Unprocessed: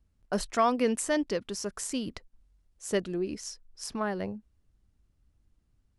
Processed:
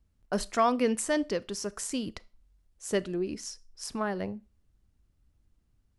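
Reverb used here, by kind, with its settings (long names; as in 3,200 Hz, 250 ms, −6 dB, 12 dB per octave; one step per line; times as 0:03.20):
four-comb reverb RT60 0.32 s, combs from 25 ms, DRR 20 dB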